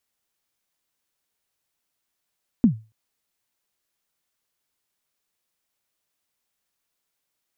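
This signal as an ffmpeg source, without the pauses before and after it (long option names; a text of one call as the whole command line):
ffmpeg -f lavfi -i "aevalsrc='0.398*pow(10,-3*t/0.29)*sin(2*PI*(260*0.101/log(110/260)*(exp(log(110/260)*min(t,0.101)/0.101)-1)+110*max(t-0.101,0)))':duration=0.28:sample_rate=44100" out.wav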